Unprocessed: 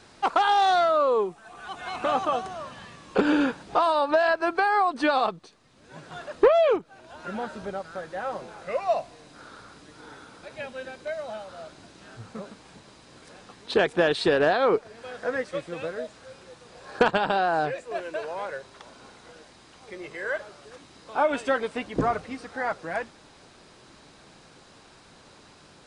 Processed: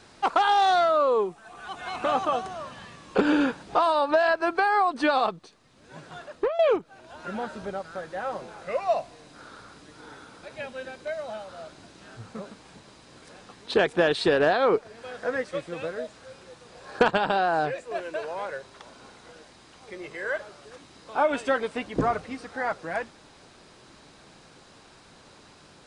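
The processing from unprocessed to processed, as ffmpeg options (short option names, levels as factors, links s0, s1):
-filter_complex "[0:a]asplit=2[s0][s1];[s0]atrim=end=6.59,asetpts=PTS-STARTPTS,afade=t=out:st=6:d=0.59:silence=0.199526[s2];[s1]atrim=start=6.59,asetpts=PTS-STARTPTS,afade=t=in:d=0.004:c=hsin:silence=0.199526[s3];[s2][s3]concat=n=2:v=0:a=1"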